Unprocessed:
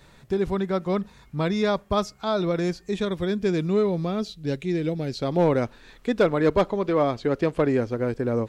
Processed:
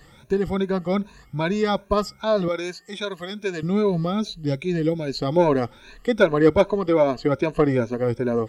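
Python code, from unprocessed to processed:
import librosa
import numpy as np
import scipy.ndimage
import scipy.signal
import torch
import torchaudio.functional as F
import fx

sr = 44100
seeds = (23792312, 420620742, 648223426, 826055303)

y = fx.spec_ripple(x, sr, per_octave=1.5, drift_hz=2.5, depth_db=16)
y = fx.highpass(y, sr, hz=770.0, slope=6, at=(2.48, 3.63))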